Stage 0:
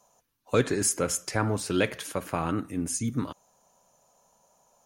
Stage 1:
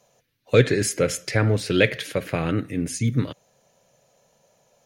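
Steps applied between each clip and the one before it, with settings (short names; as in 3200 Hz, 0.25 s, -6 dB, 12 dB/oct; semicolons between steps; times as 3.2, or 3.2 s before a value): graphic EQ 125/500/1000/2000/4000/8000 Hz +11/+9/-9/+11/+7/-4 dB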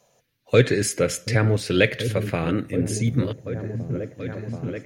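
repeats that get brighter 0.732 s, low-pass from 200 Hz, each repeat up 1 oct, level -6 dB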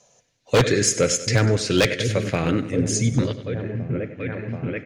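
feedback echo 97 ms, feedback 55%, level -14.5 dB; low-pass sweep 6700 Hz -> 2400 Hz, 3.12–3.82; wavefolder -10.5 dBFS; gain +1.5 dB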